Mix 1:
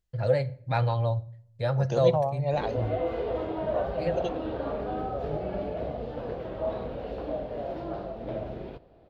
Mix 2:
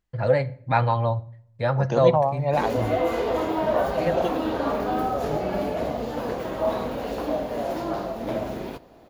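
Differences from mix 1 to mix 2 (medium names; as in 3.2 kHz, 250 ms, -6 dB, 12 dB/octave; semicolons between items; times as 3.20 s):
background: remove distance through air 380 m; master: add graphic EQ 250/1000/2000 Hz +9/+9/+6 dB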